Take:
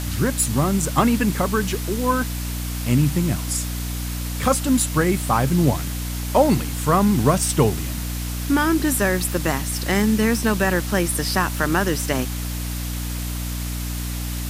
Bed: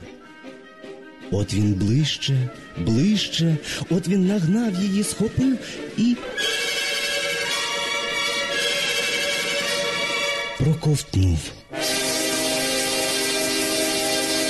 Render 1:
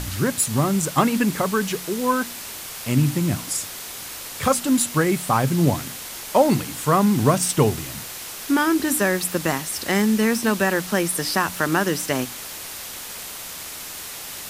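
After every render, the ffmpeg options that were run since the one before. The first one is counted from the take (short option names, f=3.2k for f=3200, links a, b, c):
-af "bandreject=f=60:t=h:w=4,bandreject=f=120:t=h:w=4,bandreject=f=180:t=h:w=4,bandreject=f=240:t=h:w=4,bandreject=f=300:t=h:w=4"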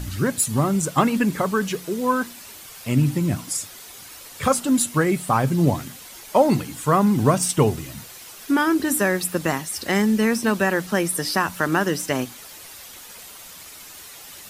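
-af "afftdn=nr=9:nf=-35"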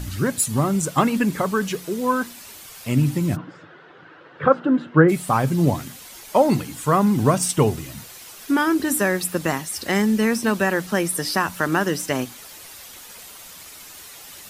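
-filter_complex "[0:a]asplit=3[a][b][c];[a]afade=t=out:st=3.35:d=0.02[d];[b]highpass=f=120:w=0.5412,highpass=f=120:w=1.3066,equalizer=f=160:t=q:w=4:g=9,equalizer=f=220:t=q:w=4:g=-7,equalizer=f=330:t=q:w=4:g=9,equalizer=f=490:t=q:w=4:g=6,equalizer=f=1.5k:t=q:w=4:g=8,equalizer=f=2.3k:t=q:w=4:g=-9,lowpass=f=2.5k:w=0.5412,lowpass=f=2.5k:w=1.3066,afade=t=in:st=3.35:d=0.02,afade=t=out:st=5.08:d=0.02[e];[c]afade=t=in:st=5.08:d=0.02[f];[d][e][f]amix=inputs=3:normalize=0"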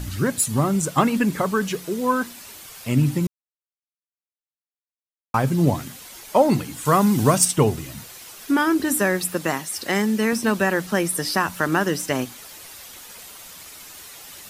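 -filter_complex "[0:a]asettb=1/sr,asplit=3[a][b][c];[a]atrim=end=6.854[d];[b]atrim=start=6.85:end=7.45,asetpts=PTS-STARTPTS,afade=t=in:d=0.004:c=qsin,afade=t=out:st=0.596:d=0.004:c=qsin,highshelf=f=3k:g=8[e];[c]atrim=start=7.446[f];[d][e]acrossfade=d=0.004:c1=hsin:c2=qsin[g];[g][f]acrossfade=d=0.004:c1=qsin:c2=hsin,asettb=1/sr,asplit=3[h][i][j];[h]atrim=end=9.344[k];[i]atrim=start=9.34:end=10.33,asetpts=PTS-STARTPTS,afade=t=in:d=0.004:c=qsin,afade=t=out:st=0.986:d=0.004:c=qsin,highpass=f=190:p=1[l];[j]atrim=start=10.326[m];[k][l]acrossfade=d=0.004:c1=hsin:c2=qsin[n];[n][m]acrossfade=d=0.004:c1=qsin:c2=hsin,asplit=3[o][p][q];[o]atrim=end=3.27,asetpts=PTS-STARTPTS,afade=t=out:st=3.266:d=0.004:c=hsin[r];[p]atrim=start=3.27:end=5.34,asetpts=PTS-STARTPTS,volume=0[s];[q]atrim=start=5.34,asetpts=PTS-STARTPTS,afade=t=in:d=0.004:c=hsin[t];[r][s][t]concat=n=3:v=0:a=1"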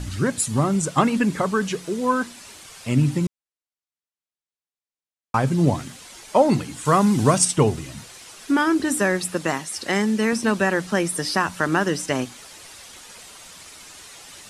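-af "lowpass=f=10k:w=0.5412,lowpass=f=10k:w=1.3066"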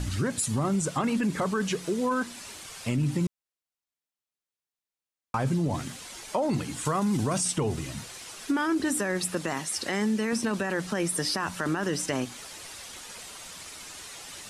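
-af "alimiter=limit=-15.5dB:level=0:latency=1:release=11,acompressor=threshold=-26dB:ratio=2"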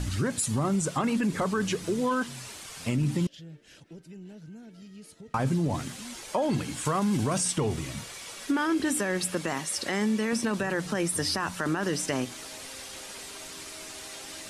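-filter_complex "[1:a]volume=-25.5dB[a];[0:a][a]amix=inputs=2:normalize=0"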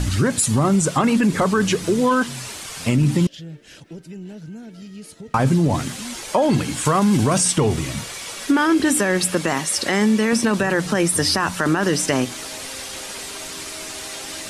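-af "volume=9.5dB"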